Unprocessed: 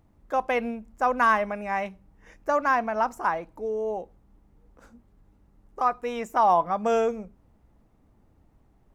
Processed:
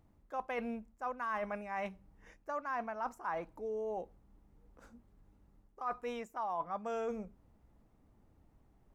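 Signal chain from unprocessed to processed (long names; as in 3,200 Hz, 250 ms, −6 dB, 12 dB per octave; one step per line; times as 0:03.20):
dynamic equaliser 1,200 Hz, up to +4 dB, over −34 dBFS, Q 1.2
reversed playback
downward compressor 6 to 1, threshold −30 dBFS, peak gain reduction 16 dB
reversed playback
level −5.5 dB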